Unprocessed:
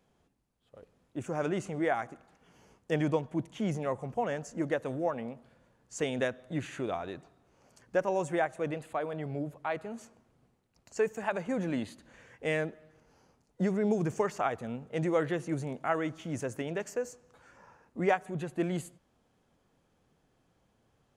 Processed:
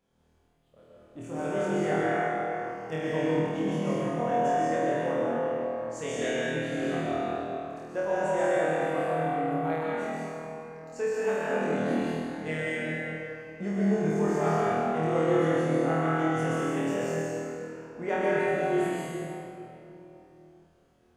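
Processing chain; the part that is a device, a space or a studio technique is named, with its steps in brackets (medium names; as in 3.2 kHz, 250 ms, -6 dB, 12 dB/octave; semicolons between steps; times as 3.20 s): tunnel (flutter echo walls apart 4.3 m, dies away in 1 s; reverberation RT60 3.1 s, pre-delay 117 ms, DRR -6 dB); trim -7 dB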